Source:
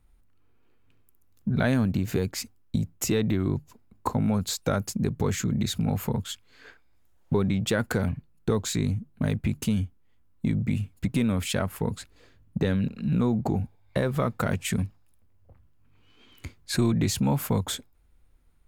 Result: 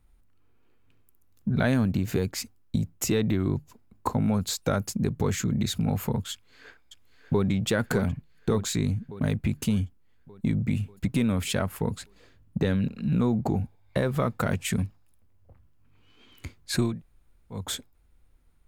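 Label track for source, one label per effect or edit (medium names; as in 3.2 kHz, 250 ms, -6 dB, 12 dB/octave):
6.320000	7.450000	echo throw 590 ms, feedback 60%, level -8 dB
16.900000	17.610000	room tone, crossfade 0.24 s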